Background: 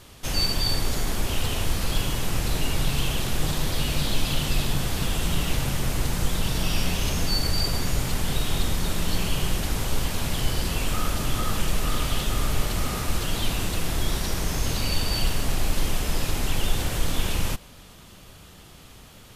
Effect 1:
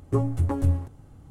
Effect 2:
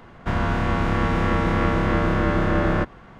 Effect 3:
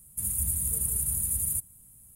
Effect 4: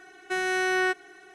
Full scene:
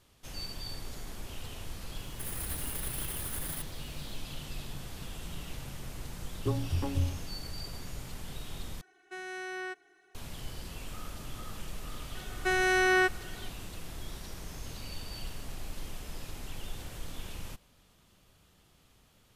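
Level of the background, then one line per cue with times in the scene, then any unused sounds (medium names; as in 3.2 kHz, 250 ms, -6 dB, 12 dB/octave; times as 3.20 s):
background -16.5 dB
2.02 s: add 3 -8.5 dB + comb filter that takes the minimum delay 0.6 ms
6.33 s: add 1 -7.5 dB
8.81 s: replace with 4 -14 dB
12.15 s: add 4
not used: 2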